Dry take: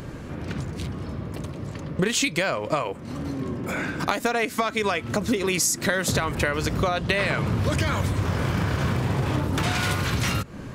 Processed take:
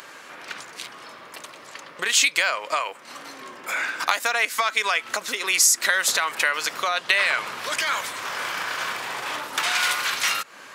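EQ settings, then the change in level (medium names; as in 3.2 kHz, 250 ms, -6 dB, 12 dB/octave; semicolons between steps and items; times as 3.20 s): high-pass 1.1 kHz 12 dB/octave; +6.0 dB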